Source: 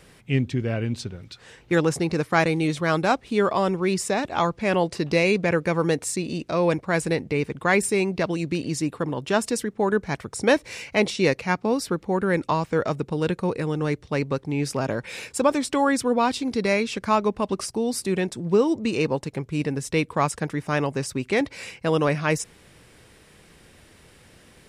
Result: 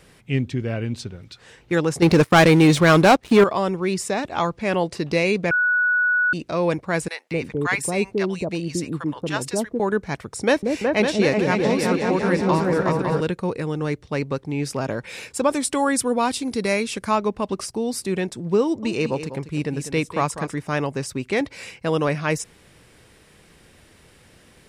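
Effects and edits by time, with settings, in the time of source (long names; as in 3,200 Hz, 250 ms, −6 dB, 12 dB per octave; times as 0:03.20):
0:02.02–0:03.44: leveller curve on the samples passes 3
0:05.51–0:06.33: beep over 1,470 Hz −16 dBFS
0:07.08–0:09.80: multiband delay without the direct sound highs, lows 230 ms, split 770 Hz
0:10.44–0:13.21: echo whose low-pass opens from repeat to repeat 185 ms, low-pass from 400 Hz, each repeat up 2 octaves, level 0 dB
0:15.50–0:17.11: parametric band 10,000 Hz +11 dB 0.82 octaves
0:18.63–0:20.59: single-tap delay 197 ms −11 dB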